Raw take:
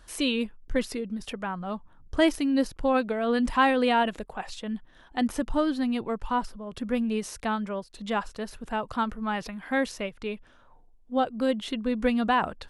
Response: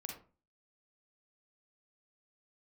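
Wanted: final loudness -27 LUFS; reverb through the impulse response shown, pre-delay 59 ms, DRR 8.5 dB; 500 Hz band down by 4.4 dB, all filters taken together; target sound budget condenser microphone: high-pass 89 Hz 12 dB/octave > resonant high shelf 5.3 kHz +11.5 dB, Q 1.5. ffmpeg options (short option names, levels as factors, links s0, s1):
-filter_complex "[0:a]equalizer=f=500:t=o:g=-5,asplit=2[s0][s1];[1:a]atrim=start_sample=2205,adelay=59[s2];[s1][s2]afir=irnorm=-1:irlink=0,volume=0.501[s3];[s0][s3]amix=inputs=2:normalize=0,highpass=89,highshelf=f=5300:t=q:w=1.5:g=11.5,volume=1.26"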